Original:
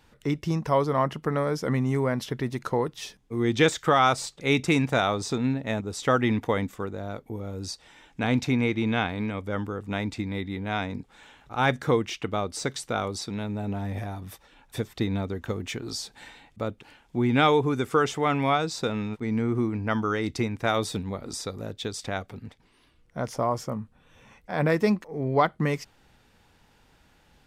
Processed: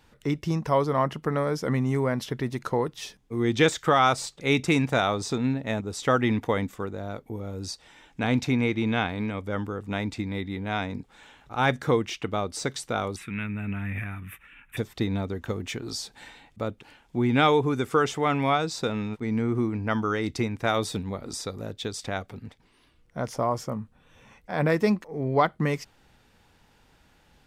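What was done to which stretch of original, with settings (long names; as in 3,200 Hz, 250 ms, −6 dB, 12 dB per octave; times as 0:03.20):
0:13.16–0:14.77: drawn EQ curve 200 Hz 0 dB, 560 Hz −12 dB, 830 Hz −11 dB, 1,300 Hz +5 dB, 2,600 Hz +12 dB, 4,600 Hz −23 dB, 10,000 Hz 0 dB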